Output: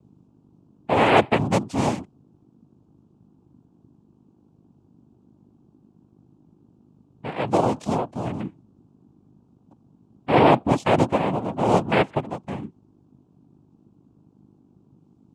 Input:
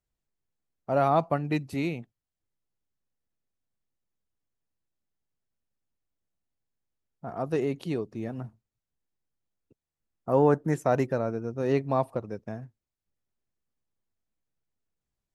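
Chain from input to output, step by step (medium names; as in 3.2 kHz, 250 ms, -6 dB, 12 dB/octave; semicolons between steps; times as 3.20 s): hum 50 Hz, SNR 24 dB; noise-vocoded speech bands 4; trim +6.5 dB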